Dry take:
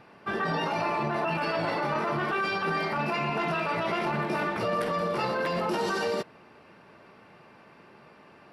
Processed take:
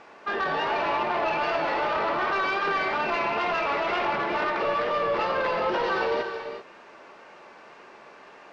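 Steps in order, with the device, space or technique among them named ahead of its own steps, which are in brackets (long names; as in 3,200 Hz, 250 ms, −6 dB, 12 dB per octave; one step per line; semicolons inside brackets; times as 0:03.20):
tape answering machine (band-pass filter 400–3,200 Hz; soft clipping −27.5 dBFS, distortion −14 dB; tape wow and flutter; white noise bed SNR 31 dB)
low-pass filter 5,500 Hz 24 dB per octave
reverb whose tail is shaped and stops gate 410 ms rising, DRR 6.5 dB
level +6 dB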